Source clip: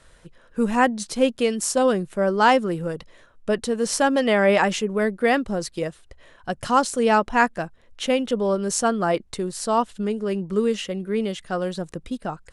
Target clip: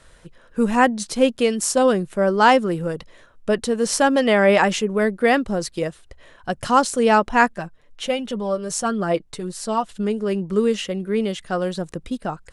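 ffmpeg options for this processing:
ffmpeg -i in.wav -filter_complex "[0:a]asettb=1/sr,asplit=3[link_01][link_02][link_03];[link_01]atrim=end=7.534[link_04];[link_02]atrim=start=7.53:end=9.89,asetpts=PTS-STARTPTS,afade=type=in:duration=0.004:curve=qsin,afade=type=out:start_time=2.356:duration=0.004:curve=qsin,flanger=delay=4.9:depth=2:regen=25:speed=1.4:shape=sinusoidal[link_05];[link_03]atrim=start=9.886[link_06];[link_04][link_05]acrossfade=duration=0.004:curve1=hsin:curve2=qsin[link_07];[link_07][link_06]acrossfade=duration=0.004:curve1=qsin:curve2=hsin,volume=2.5dB" out.wav

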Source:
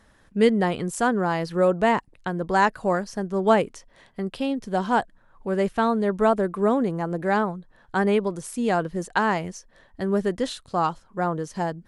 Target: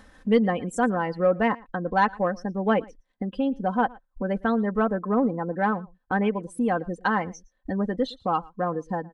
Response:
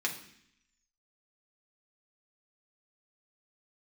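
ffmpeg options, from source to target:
-filter_complex "[0:a]agate=range=-10dB:threshold=-50dB:ratio=16:detection=peak,afftdn=noise_reduction=22:noise_floor=-34,highshelf=frequency=10000:gain=-6.5,atempo=1.3,acompressor=mode=upward:threshold=-23dB:ratio=2.5,aecho=1:1:3.9:0.57,acontrast=33,asplit=2[link_01][link_02];[link_02]aecho=0:1:114:0.0631[link_03];[link_01][link_03]amix=inputs=2:normalize=0,volume=-7.5dB"

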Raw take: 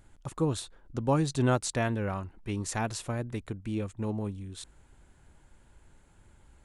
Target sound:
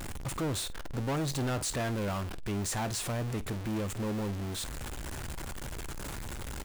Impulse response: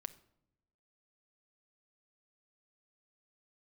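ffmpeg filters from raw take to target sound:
-af "aeval=exprs='val(0)+0.5*0.0224*sgn(val(0))':channel_layout=same,aecho=1:1:15|50:0.141|0.126,asoftclip=type=tanh:threshold=-28.5dB"

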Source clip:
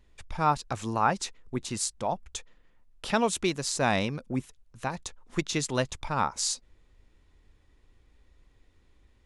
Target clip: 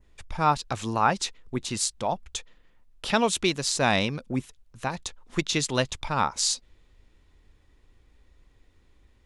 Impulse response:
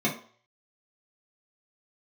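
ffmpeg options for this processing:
-af "adynamicequalizer=threshold=0.00501:dfrequency=3500:dqfactor=1.1:tfrequency=3500:tqfactor=1.1:attack=5:release=100:ratio=0.375:range=2.5:mode=boostabove:tftype=bell,volume=2dB"

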